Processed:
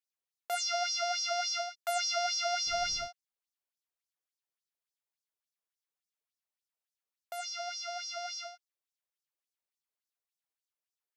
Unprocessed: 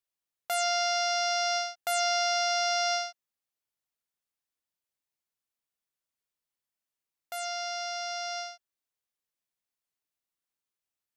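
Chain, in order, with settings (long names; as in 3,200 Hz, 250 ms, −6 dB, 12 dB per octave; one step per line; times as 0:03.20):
auto-filter high-pass sine 3.5 Hz 410–5,700 Hz
0:02.66–0:03.06: background noise brown −43 dBFS
level −6.5 dB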